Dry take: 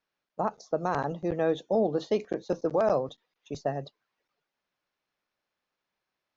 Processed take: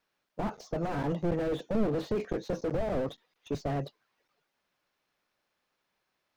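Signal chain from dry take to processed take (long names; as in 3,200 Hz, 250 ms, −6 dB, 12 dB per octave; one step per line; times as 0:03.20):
dynamic equaliser 2,000 Hz, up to +7 dB, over −46 dBFS, Q 1.1
slew-rate limiting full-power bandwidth 10 Hz
level +5 dB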